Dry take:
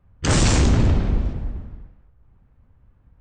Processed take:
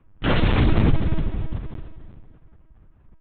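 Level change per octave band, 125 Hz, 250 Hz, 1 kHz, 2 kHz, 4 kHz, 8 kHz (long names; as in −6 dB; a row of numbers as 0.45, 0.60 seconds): −2.0 dB, −0.5 dB, −0.5 dB, −0.5 dB, −4.0 dB, below −40 dB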